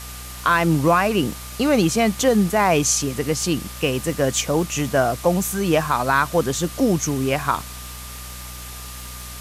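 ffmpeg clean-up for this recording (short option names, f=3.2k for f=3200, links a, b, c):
-af "adeclick=t=4,bandreject=f=61.5:t=h:w=4,bandreject=f=123:t=h:w=4,bandreject=f=184.5:t=h:w=4,bandreject=f=246:t=h:w=4,bandreject=f=1.2k:w=30,afftdn=nr=30:nf=-35"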